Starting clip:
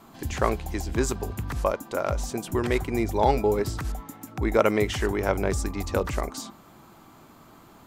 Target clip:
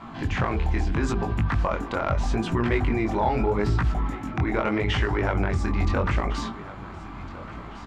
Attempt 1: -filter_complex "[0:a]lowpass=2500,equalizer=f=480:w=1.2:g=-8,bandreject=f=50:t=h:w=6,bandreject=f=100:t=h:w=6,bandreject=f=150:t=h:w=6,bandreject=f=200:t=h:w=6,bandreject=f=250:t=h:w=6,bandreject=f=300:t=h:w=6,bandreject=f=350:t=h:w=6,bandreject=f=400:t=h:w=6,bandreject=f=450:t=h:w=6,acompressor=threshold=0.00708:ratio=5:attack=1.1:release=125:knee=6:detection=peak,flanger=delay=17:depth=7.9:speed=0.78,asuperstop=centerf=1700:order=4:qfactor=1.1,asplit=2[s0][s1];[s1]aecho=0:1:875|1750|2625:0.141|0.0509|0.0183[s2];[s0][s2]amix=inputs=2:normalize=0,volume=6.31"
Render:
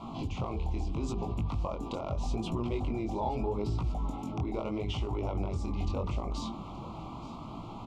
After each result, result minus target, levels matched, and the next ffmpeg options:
2 kHz band -11.5 dB; compression: peak gain reduction +9 dB; echo 531 ms early
-filter_complex "[0:a]lowpass=2500,equalizer=f=480:w=1.2:g=-8,bandreject=f=50:t=h:w=6,bandreject=f=100:t=h:w=6,bandreject=f=150:t=h:w=6,bandreject=f=200:t=h:w=6,bandreject=f=250:t=h:w=6,bandreject=f=300:t=h:w=6,bandreject=f=350:t=h:w=6,bandreject=f=400:t=h:w=6,bandreject=f=450:t=h:w=6,acompressor=threshold=0.00708:ratio=5:attack=1.1:release=125:knee=6:detection=peak,flanger=delay=17:depth=7.9:speed=0.78,asplit=2[s0][s1];[s1]aecho=0:1:875|1750|2625:0.141|0.0509|0.0183[s2];[s0][s2]amix=inputs=2:normalize=0,volume=6.31"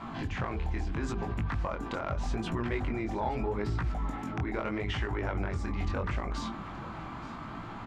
compression: peak gain reduction +9 dB; echo 531 ms early
-filter_complex "[0:a]lowpass=2500,equalizer=f=480:w=1.2:g=-8,bandreject=f=50:t=h:w=6,bandreject=f=100:t=h:w=6,bandreject=f=150:t=h:w=6,bandreject=f=200:t=h:w=6,bandreject=f=250:t=h:w=6,bandreject=f=300:t=h:w=6,bandreject=f=350:t=h:w=6,bandreject=f=400:t=h:w=6,bandreject=f=450:t=h:w=6,acompressor=threshold=0.0251:ratio=5:attack=1.1:release=125:knee=6:detection=peak,flanger=delay=17:depth=7.9:speed=0.78,asplit=2[s0][s1];[s1]aecho=0:1:875|1750|2625:0.141|0.0509|0.0183[s2];[s0][s2]amix=inputs=2:normalize=0,volume=6.31"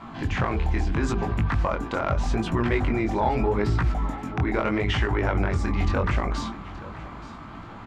echo 531 ms early
-filter_complex "[0:a]lowpass=2500,equalizer=f=480:w=1.2:g=-8,bandreject=f=50:t=h:w=6,bandreject=f=100:t=h:w=6,bandreject=f=150:t=h:w=6,bandreject=f=200:t=h:w=6,bandreject=f=250:t=h:w=6,bandreject=f=300:t=h:w=6,bandreject=f=350:t=h:w=6,bandreject=f=400:t=h:w=6,bandreject=f=450:t=h:w=6,acompressor=threshold=0.0251:ratio=5:attack=1.1:release=125:knee=6:detection=peak,flanger=delay=17:depth=7.9:speed=0.78,asplit=2[s0][s1];[s1]aecho=0:1:1406|2812|4218:0.141|0.0509|0.0183[s2];[s0][s2]amix=inputs=2:normalize=0,volume=6.31"

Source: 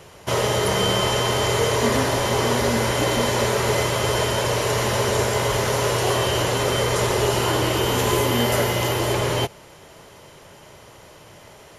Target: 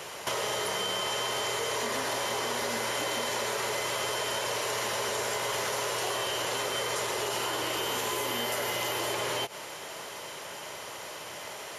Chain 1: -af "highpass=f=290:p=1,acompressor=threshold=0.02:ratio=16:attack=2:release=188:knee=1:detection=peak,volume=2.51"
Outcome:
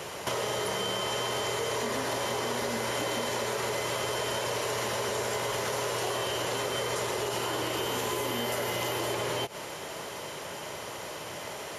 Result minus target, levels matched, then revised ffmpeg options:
250 Hz band +4.0 dB
-af "highpass=f=760:p=1,acompressor=threshold=0.02:ratio=16:attack=2:release=188:knee=1:detection=peak,volume=2.51"

